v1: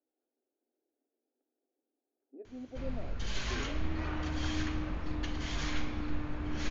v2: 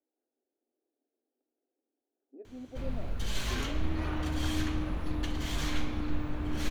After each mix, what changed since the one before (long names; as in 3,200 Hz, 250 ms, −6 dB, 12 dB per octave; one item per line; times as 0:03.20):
background: remove Chebyshev low-pass with heavy ripple 6,900 Hz, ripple 3 dB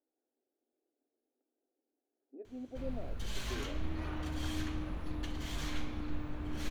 background −6.0 dB